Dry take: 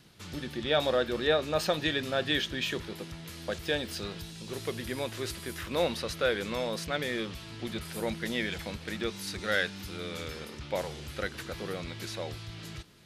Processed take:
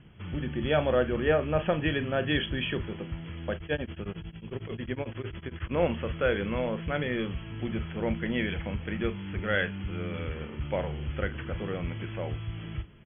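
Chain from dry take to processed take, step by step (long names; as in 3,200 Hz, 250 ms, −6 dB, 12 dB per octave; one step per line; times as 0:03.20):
linear-phase brick-wall low-pass 3,400 Hz
low-shelf EQ 190 Hz +11.5 dB
double-tracking delay 40 ms −13 dB
0:03.55–0:05.74: tremolo along a rectified sine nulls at 11 Hz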